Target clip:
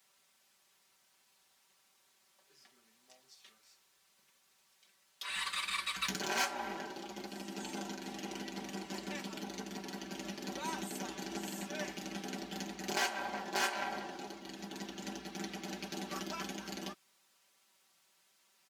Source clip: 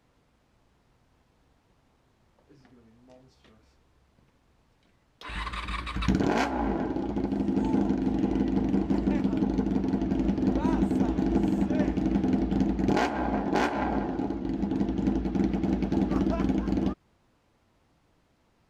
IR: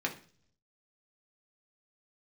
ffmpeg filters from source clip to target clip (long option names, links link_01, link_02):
-filter_complex "[0:a]aderivative,aecho=1:1:5.2:0.81,acrossover=split=160|970|1900[link_01][link_02][link_03][link_04];[link_04]asoftclip=type=tanh:threshold=-38dB[link_05];[link_01][link_02][link_03][link_05]amix=inputs=4:normalize=0,volume=8.5dB" -ar 48000 -c:a aac -b:a 192k